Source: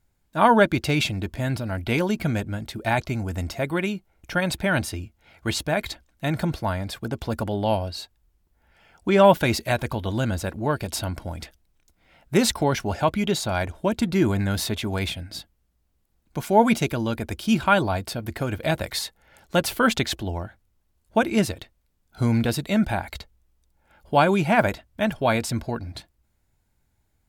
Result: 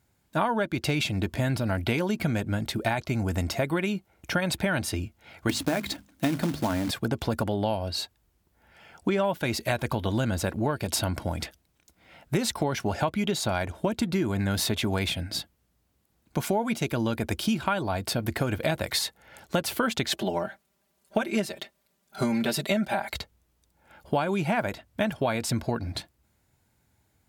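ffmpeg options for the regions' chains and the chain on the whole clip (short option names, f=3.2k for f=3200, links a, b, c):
-filter_complex "[0:a]asettb=1/sr,asplit=3[a][b][c];[a]atrim=end=5.494[d];[b]atrim=start=5.49:end=6.91,asetpts=PTS-STARTPTS,afade=t=in:d=0.004:c=qsin,afade=t=out:st=1.416:d=0.004:c=qsin,equalizer=f=270:t=o:w=0.49:g=14.5,bandreject=f=50:t=h:w=6,bandreject=f=100:t=h:w=6,bandreject=f=150:t=h:w=6,bandreject=f=200:t=h:w=6,bandreject=f=250:t=h:w=6,acrusher=bits=3:mode=log:mix=0:aa=0.000001[e];[c]atrim=start=6.906[f];[d][e]acrossfade=d=0.004:c1=hsin:c2=qsin[g];[g][f]acrossfade=d=0.004:c1=qsin:c2=hsin,asettb=1/sr,asplit=3[h][i][j];[h]atrim=end=20.114[k];[i]atrim=start=20.11:end=23.13,asetpts=PTS-STARTPTS,afade=t=in:d=0.004:c=qsin,afade=t=out:st=3.016:d=0.004:c=qsin,highpass=f=270:p=1,equalizer=f=640:t=o:w=0.2:g=5.5,aecho=1:1:5.1:0.97,atrim=end_sample=133182[l];[j]atrim=start=23.126[m];[k][l]acrossfade=d=0.004:c1=hsin:c2=qsin[n];[n][m]acrossfade=d=0.004:c1=qsin:c2=hsin,highpass=83,acompressor=threshold=-27dB:ratio=12,volume=4.5dB"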